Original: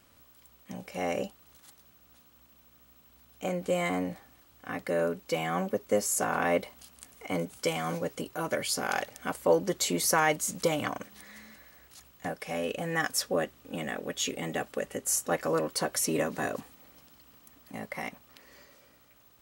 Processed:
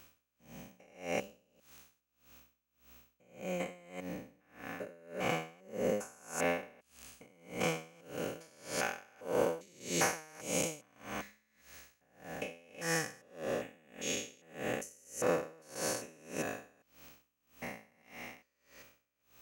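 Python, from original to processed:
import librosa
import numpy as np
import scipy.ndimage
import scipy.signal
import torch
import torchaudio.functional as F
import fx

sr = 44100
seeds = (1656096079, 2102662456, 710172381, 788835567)

y = fx.spec_steps(x, sr, hold_ms=400)
y = fx.graphic_eq_31(y, sr, hz=(500, 1600, 2500, 6300), db=(3, 3, 9, 8))
y = y * 10.0 ** (-30 * (0.5 - 0.5 * np.cos(2.0 * np.pi * 1.7 * np.arange(len(y)) / sr)) / 20.0)
y = y * librosa.db_to_amplitude(2.5)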